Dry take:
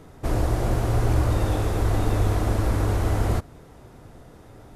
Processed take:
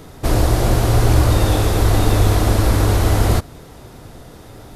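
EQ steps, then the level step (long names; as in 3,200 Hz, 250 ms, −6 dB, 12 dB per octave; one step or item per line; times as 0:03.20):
parametric band 4,100 Hz +6 dB 1.2 octaves
high-shelf EQ 11,000 Hz +11.5 dB
+7.5 dB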